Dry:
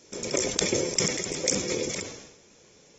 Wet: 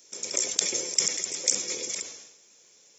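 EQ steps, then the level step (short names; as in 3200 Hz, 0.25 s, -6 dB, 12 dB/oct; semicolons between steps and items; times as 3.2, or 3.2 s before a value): RIAA curve recording; -7.5 dB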